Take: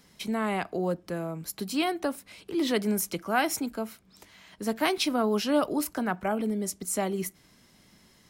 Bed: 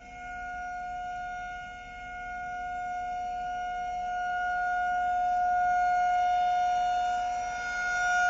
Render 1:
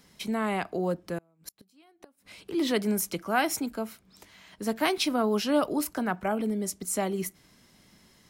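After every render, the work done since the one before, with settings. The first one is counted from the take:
0:01.18–0:02.40: gate with flip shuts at −26 dBFS, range −32 dB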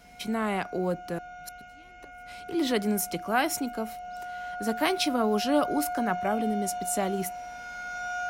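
mix in bed −7 dB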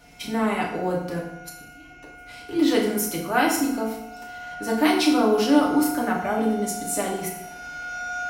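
feedback delay network reverb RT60 0.81 s, low-frequency decay 1.2×, high-frequency decay 0.8×, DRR −3 dB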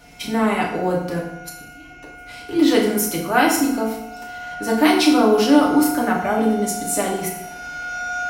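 level +4.5 dB
brickwall limiter −3 dBFS, peak gain reduction 1 dB

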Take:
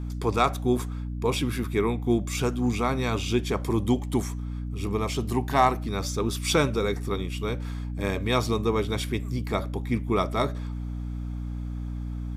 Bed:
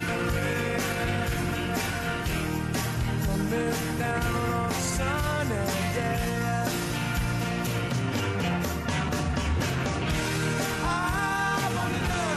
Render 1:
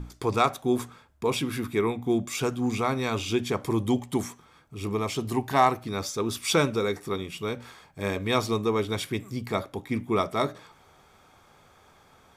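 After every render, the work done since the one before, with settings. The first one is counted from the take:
mains-hum notches 60/120/180/240/300 Hz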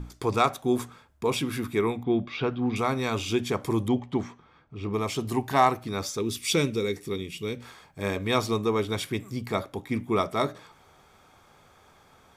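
0:02.03–0:02.76: inverse Chebyshev low-pass filter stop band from 7,400 Hz
0:03.88–0:04.94: high-frequency loss of the air 210 metres
0:06.19–0:07.62: flat-topped bell 960 Hz −10.5 dB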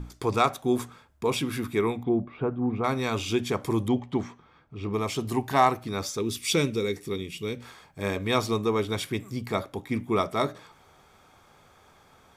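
0:02.09–0:02.84: low-pass filter 1,100 Hz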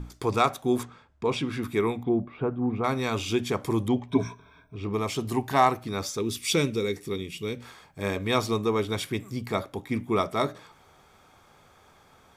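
0:00.83–0:01.63: high-frequency loss of the air 87 metres
0:04.08–0:04.76: EQ curve with evenly spaced ripples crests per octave 1.6, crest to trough 18 dB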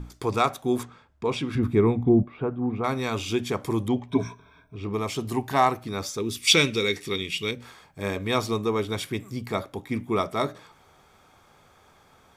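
0:01.55–0:02.23: spectral tilt −3.5 dB per octave
0:06.47–0:07.51: parametric band 3,000 Hz +11 dB 2.7 octaves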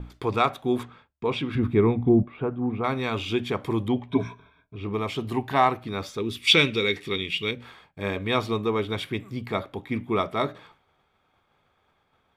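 downward expander −48 dBFS
high shelf with overshoot 4,500 Hz −9 dB, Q 1.5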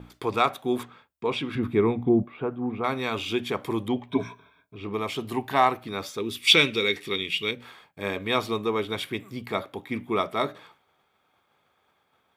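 high-pass filter 210 Hz 6 dB per octave
high-shelf EQ 9,200 Hz +9.5 dB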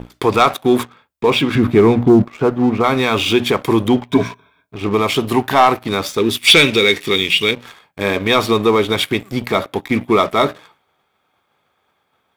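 leveller curve on the samples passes 2
in parallel at +2.5 dB: brickwall limiter −14 dBFS, peak gain reduction 9.5 dB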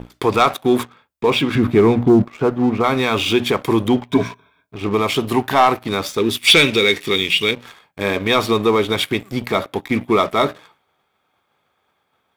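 level −2 dB

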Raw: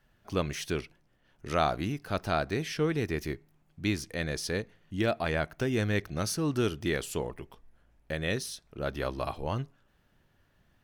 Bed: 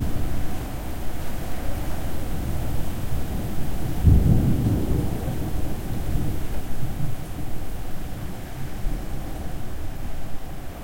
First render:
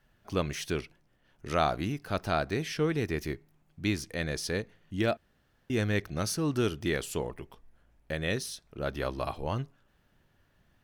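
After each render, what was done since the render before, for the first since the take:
0:05.17–0:05.70: fill with room tone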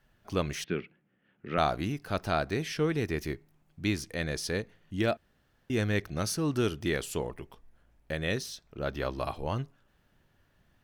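0:00.64–0:01.58: loudspeaker in its box 160–2,800 Hz, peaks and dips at 190 Hz +8 dB, 650 Hz −7 dB, 980 Hz −9 dB
0:08.41–0:09.16: parametric band 10,000 Hz −12 dB 0.29 octaves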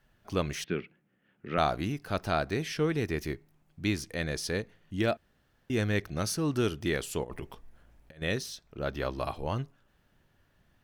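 0:07.24–0:08.22: compressor whose output falls as the input rises −41 dBFS, ratio −0.5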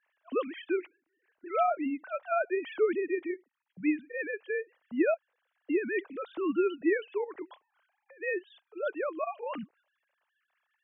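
three sine waves on the formant tracks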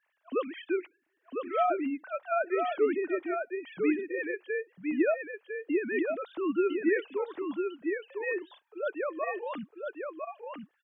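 single-tap delay 1,003 ms −5 dB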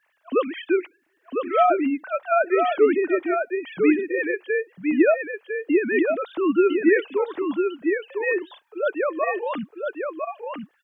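level +9 dB

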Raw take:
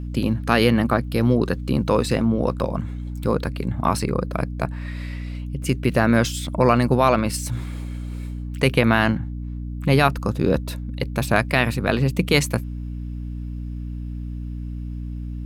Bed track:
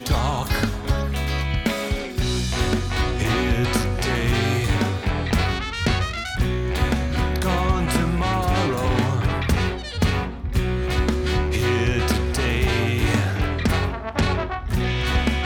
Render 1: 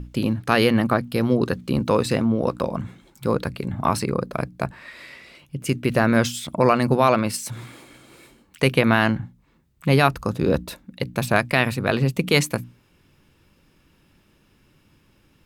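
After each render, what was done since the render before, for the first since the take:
mains-hum notches 60/120/180/240/300 Hz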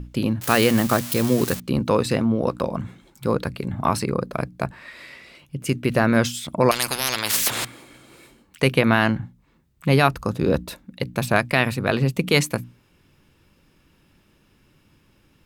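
0:00.41–0:01.60: spike at every zero crossing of −15.5 dBFS
0:06.71–0:07.65: every bin compressed towards the loudest bin 10 to 1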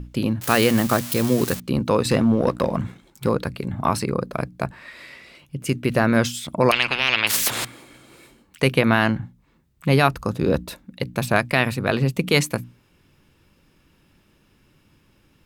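0:02.05–0:03.29: leveller curve on the samples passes 1
0:06.72–0:07.27: low-pass with resonance 2,700 Hz, resonance Q 4.2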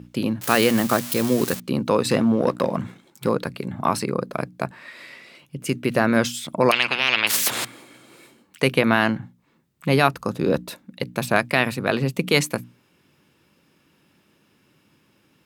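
high-pass filter 150 Hz 12 dB per octave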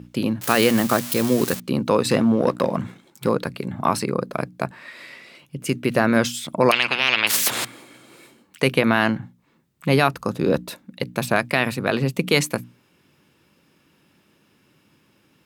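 level +1 dB
brickwall limiter −3 dBFS, peak gain reduction 3 dB

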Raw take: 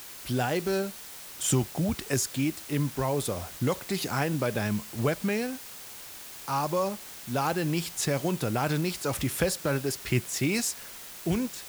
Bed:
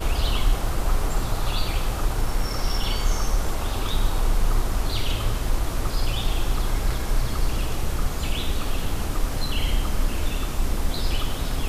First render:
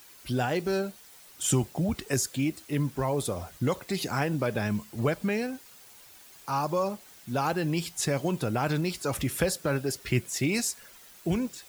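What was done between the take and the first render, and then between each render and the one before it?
broadband denoise 10 dB, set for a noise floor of −44 dBFS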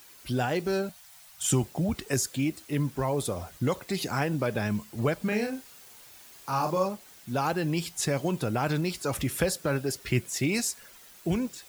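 0:00.89–0:01.51: elliptic band-stop filter 170–630 Hz
0:05.22–0:06.86: double-tracking delay 38 ms −5 dB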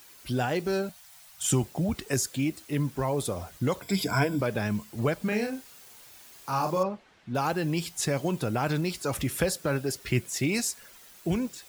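0:03.82–0:04.41: EQ curve with evenly spaced ripples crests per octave 1.7, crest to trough 14 dB
0:06.83–0:07.35: low-pass filter 2,700 Hz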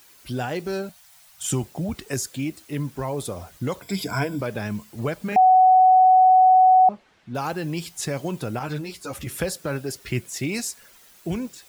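0:05.36–0:06.89: beep over 746 Hz −10.5 dBFS
0:08.59–0:09.27: string-ensemble chorus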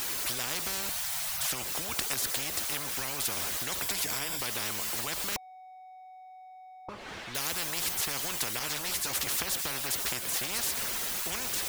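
downward compressor 6 to 1, threshold −26 dBFS, peak gain reduction 12.5 dB
every bin compressed towards the loudest bin 10 to 1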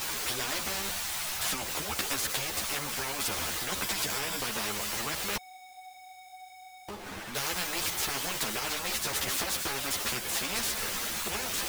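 each half-wave held at its own peak
string-ensemble chorus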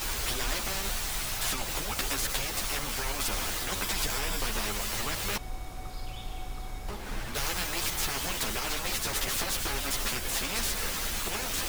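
mix in bed −15 dB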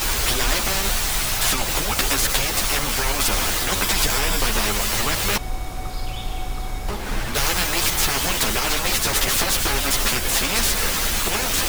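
level +10.5 dB

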